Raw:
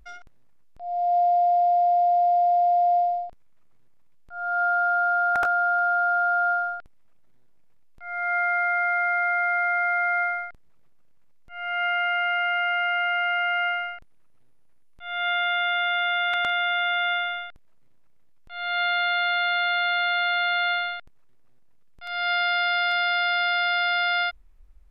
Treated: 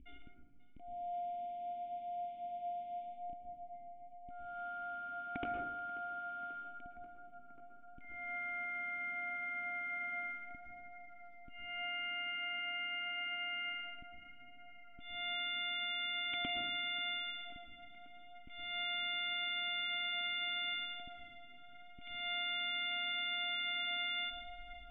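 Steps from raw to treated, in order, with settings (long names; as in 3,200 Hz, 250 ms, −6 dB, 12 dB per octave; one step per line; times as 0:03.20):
formant resonators in series i
tape delay 537 ms, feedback 89%, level −16 dB, low-pass 2,300 Hz
on a send at −4 dB: convolution reverb RT60 0.85 s, pre-delay 103 ms
on the sum: level +8.5 dB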